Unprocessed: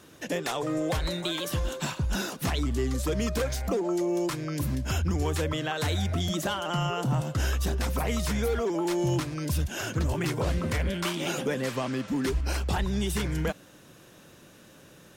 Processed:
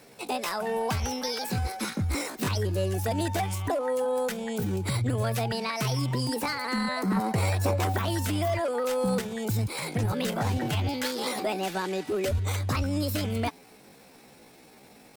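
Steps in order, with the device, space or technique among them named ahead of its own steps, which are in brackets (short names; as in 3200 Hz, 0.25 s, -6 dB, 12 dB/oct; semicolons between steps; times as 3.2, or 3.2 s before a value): chipmunk voice (pitch shift +6.5 st); 7.16–7.97 bell 660 Hz +9 dB 1.7 oct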